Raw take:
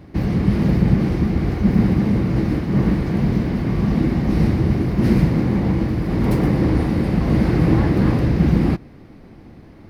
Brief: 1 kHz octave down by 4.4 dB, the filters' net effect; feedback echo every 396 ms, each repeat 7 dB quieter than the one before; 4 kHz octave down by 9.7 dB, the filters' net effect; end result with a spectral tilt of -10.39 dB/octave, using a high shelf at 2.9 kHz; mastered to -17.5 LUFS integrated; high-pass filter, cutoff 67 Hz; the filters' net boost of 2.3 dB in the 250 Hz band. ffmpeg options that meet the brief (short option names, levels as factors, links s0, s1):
-af "highpass=67,equalizer=f=250:t=o:g=3.5,equalizer=f=1000:t=o:g=-5,highshelf=f=2900:g=-7,equalizer=f=4000:t=o:g=-7,aecho=1:1:396|792|1188|1584|1980:0.447|0.201|0.0905|0.0407|0.0183,volume=0.891"